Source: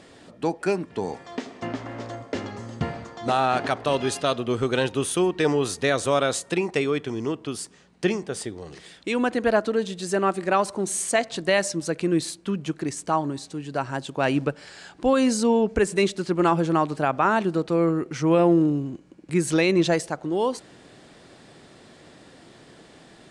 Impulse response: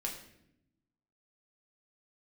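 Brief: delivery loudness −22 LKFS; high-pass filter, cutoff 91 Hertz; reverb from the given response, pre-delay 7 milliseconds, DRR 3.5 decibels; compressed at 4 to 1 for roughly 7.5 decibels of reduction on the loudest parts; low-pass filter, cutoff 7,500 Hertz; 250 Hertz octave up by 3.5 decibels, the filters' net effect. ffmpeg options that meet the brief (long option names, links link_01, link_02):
-filter_complex "[0:a]highpass=91,lowpass=7500,equalizer=frequency=250:width_type=o:gain=5,acompressor=threshold=-22dB:ratio=4,asplit=2[link_01][link_02];[1:a]atrim=start_sample=2205,adelay=7[link_03];[link_02][link_03]afir=irnorm=-1:irlink=0,volume=-4.5dB[link_04];[link_01][link_04]amix=inputs=2:normalize=0,volume=4dB"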